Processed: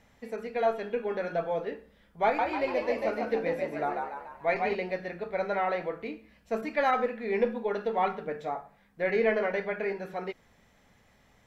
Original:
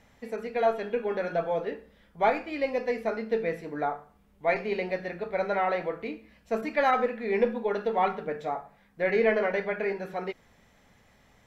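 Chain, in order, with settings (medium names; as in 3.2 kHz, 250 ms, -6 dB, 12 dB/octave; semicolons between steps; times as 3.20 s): 2.24–4.75 s: frequency-shifting echo 145 ms, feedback 49%, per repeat +64 Hz, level -3.5 dB; trim -2 dB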